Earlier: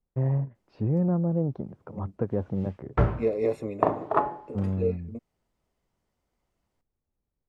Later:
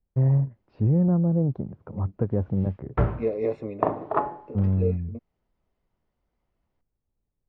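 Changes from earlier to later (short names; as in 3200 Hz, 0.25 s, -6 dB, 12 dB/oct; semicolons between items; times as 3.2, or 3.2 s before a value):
first voice: add low shelf 140 Hz +10.5 dB; master: add air absorption 180 m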